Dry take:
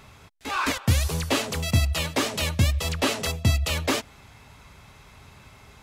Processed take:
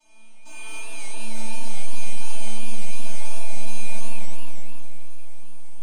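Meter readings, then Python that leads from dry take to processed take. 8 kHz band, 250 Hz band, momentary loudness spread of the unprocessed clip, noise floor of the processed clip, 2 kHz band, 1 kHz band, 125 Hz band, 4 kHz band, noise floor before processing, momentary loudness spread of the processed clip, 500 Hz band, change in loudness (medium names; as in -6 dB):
-4.0 dB, -11.5 dB, 4 LU, -35 dBFS, -9.0 dB, -10.5 dB, -7.5 dB, -12.0 dB, -51 dBFS, 16 LU, -13.5 dB, -12.0 dB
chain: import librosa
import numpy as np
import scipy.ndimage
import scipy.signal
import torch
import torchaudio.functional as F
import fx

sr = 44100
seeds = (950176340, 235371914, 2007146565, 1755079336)

p1 = scipy.signal.sosfilt(scipy.signal.butter(2, 130.0, 'highpass', fs=sr, output='sos'), x)
p2 = fx.over_compress(p1, sr, threshold_db=-33.0, ratio=-1.0)
p3 = p1 + (p2 * 10.0 ** (0.0 / 20.0))
p4 = fx.noise_vocoder(p3, sr, seeds[0], bands=4)
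p5 = fx.fixed_phaser(p4, sr, hz=330.0, stages=8)
p6 = np.clip(10.0 ** (25.5 / 20.0) * p5, -1.0, 1.0) / 10.0 ** (25.5 / 20.0)
p7 = fx.robotise(p6, sr, hz=305.0)
p8 = fx.comb_fb(p7, sr, f0_hz=220.0, decay_s=0.68, harmonics='all', damping=0.0, mix_pct=100)
p9 = p8 + fx.echo_multitap(p8, sr, ms=(82, 98), db=(-8.0, -7.5), dry=0)
p10 = fx.rev_spring(p9, sr, rt60_s=1.7, pass_ms=(32,), chirp_ms=65, drr_db=-10.0)
p11 = fx.echo_warbled(p10, sr, ms=266, feedback_pct=58, rate_hz=2.8, cents=185, wet_db=-6.0)
y = p11 * 10.0 ** (7.0 / 20.0)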